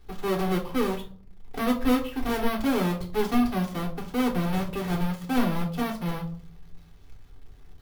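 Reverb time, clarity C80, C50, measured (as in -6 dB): 0.50 s, 16.0 dB, 12.0 dB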